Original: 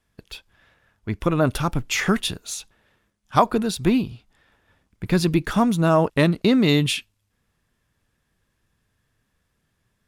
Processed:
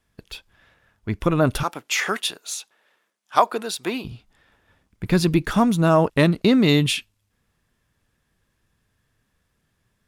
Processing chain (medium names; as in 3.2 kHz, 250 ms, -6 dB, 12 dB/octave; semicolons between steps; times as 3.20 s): 1.63–4.05 s: high-pass 480 Hz 12 dB/octave; trim +1 dB